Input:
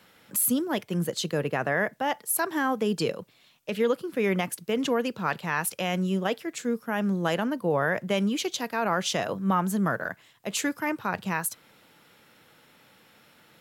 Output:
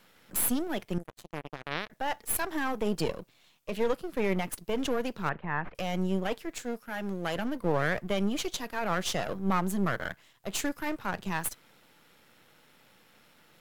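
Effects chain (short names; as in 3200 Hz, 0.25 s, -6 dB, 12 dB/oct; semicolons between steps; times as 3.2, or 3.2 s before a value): half-wave gain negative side -12 dB; 0.98–1.9 power-law curve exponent 3; 5.29–5.75 LPF 2100 Hz 24 dB/oct; 6.62–7.36 low shelf 390 Hz -7.5 dB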